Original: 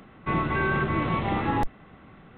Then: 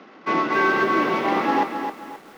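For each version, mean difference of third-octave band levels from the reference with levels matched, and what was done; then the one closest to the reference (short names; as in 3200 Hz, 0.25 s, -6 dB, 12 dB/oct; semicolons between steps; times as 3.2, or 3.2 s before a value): 8.5 dB: CVSD 32 kbps; HPF 260 Hz 24 dB/oct; air absorption 150 m; lo-fi delay 0.265 s, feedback 35%, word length 9-bit, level -7 dB; gain +7 dB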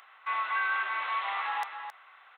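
13.5 dB: HPF 930 Hz 24 dB/oct; in parallel at -2 dB: limiter -29 dBFS, peak gain reduction 10 dB; on the sum: echo 0.268 s -8.5 dB; gain -3.5 dB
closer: first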